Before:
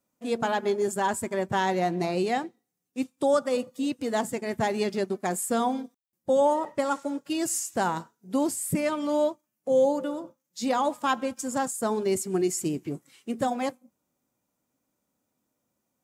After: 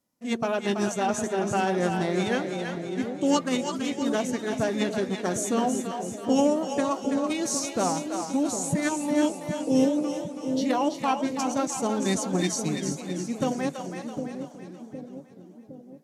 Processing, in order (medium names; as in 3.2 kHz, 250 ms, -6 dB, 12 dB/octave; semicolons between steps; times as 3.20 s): formant shift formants -3 st; two-band feedback delay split 570 Hz, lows 760 ms, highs 330 ms, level -6 dB; modulated delay 380 ms, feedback 44%, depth 218 cents, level -16 dB